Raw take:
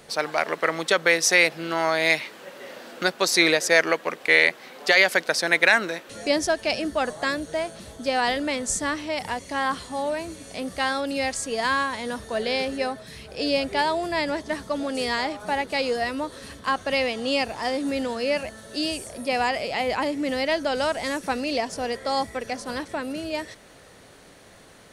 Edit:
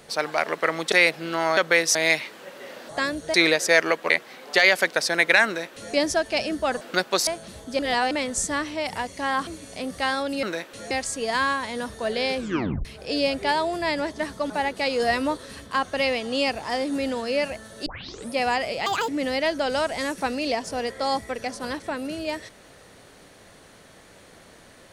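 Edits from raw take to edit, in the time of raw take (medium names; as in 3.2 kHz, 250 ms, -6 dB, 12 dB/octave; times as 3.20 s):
0.92–1.30 s: move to 1.95 s
2.89–3.35 s: swap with 7.14–7.59 s
4.11–4.43 s: delete
5.79–6.27 s: copy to 11.21 s
8.11–8.43 s: reverse
9.79–10.25 s: delete
12.66 s: tape stop 0.49 s
14.80–15.43 s: delete
15.93–16.30 s: gain +4 dB
18.79 s: tape start 0.44 s
19.79–20.14 s: speed 156%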